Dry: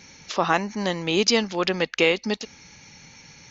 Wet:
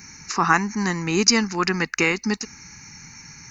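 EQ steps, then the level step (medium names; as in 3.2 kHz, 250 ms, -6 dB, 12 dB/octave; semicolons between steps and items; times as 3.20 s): treble shelf 6 kHz +10.5 dB; static phaser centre 1.4 kHz, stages 4; +6.0 dB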